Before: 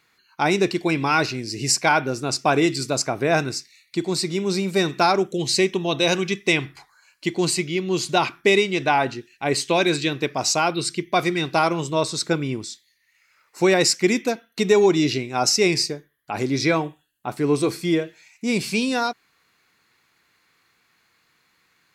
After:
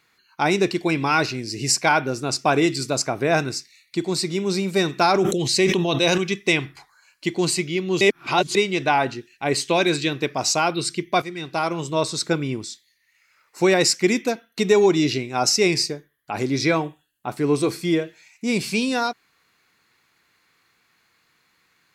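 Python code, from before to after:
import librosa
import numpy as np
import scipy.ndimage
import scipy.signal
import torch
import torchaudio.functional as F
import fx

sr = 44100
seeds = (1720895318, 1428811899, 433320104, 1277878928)

y = fx.sustainer(x, sr, db_per_s=29.0, at=(5.09, 6.18))
y = fx.edit(y, sr, fx.reverse_span(start_s=8.01, length_s=0.54),
    fx.fade_in_from(start_s=11.22, length_s=0.8, floor_db=-12.5), tone=tone)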